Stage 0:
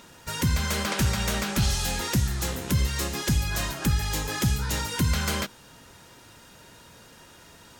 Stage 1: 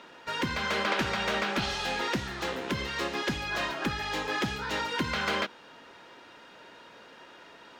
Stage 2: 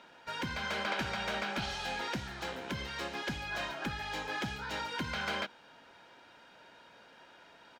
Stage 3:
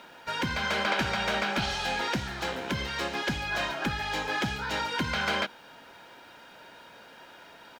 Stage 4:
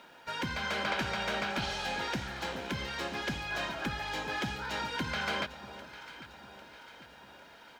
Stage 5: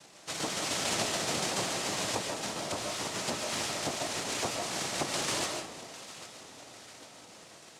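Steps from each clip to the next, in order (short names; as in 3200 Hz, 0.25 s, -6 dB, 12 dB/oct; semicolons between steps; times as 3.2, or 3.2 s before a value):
three-band isolator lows -21 dB, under 250 Hz, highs -24 dB, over 4100 Hz; gain +2.5 dB
comb 1.3 ms, depth 31%; gain -6.5 dB
requantised 12-bit, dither none; gain +7 dB
echo with dull and thin repeats by turns 0.4 s, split 1100 Hz, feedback 72%, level -12 dB; gain -5 dB
noise vocoder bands 2; digital reverb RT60 0.45 s, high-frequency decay 0.6×, pre-delay 0.1 s, DRR 2.5 dB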